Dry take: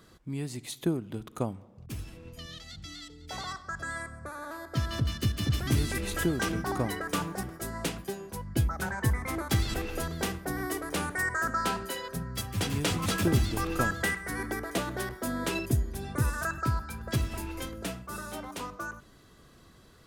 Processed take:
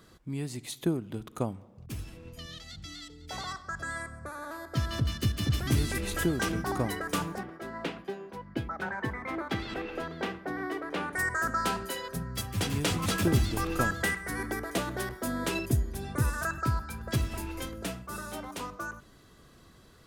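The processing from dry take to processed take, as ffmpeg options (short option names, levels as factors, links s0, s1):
-filter_complex "[0:a]asettb=1/sr,asplit=3[s0][s1][s2];[s0]atrim=end=7.384[s3];[s1]atrim=start=7.38:end=11.13,asetpts=PTS-STARTPTS,afade=t=in:d=0.004:c=qsin,afade=t=out:st=3.746:d=0.004:c=qsin,acrossover=split=180 3800:gain=0.178 1 0.0794[s4][s5][s6];[s4][s5][s6]amix=inputs=3:normalize=0[s7];[s2]atrim=start=11.126[s8];[s3][s7]acrossfade=d=0.004:c1=hsin:c2=qsin[s9];[s9][s8]acrossfade=d=0.004:c1=qsin:c2=hsin"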